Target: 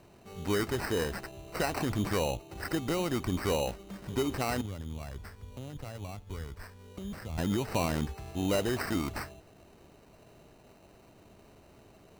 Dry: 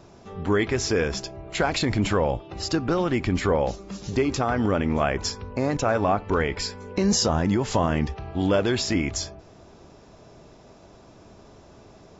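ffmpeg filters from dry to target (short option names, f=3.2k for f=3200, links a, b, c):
-filter_complex "[0:a]asettb=1/sr,asplit=3[a][b][c];[a]atrim=end=4.614[d];[b]atrim=start=4.61:end=7.38,asetpts=PTS-STARTPTS,afade=t=in:d=0.004:c=qsin,afade=t=out:st=2.766:d=0.004:c=qsin,acrossover=split=130[e][f];[f]acompressor=threshold=-49dB:ratio=2[g];[e][g]amix=inputs=2:normalize=0[h];[c]atrim=start=7.376[i];[d][h]acrossfade=d=0.004:c1=hsin:c2=qsin[j];[j][i]acrossfade=d=0.004:c1=qsin:c2=hsin,acrusher=samples=13:mix=1:aa=0.000001,volume=-7.5dB"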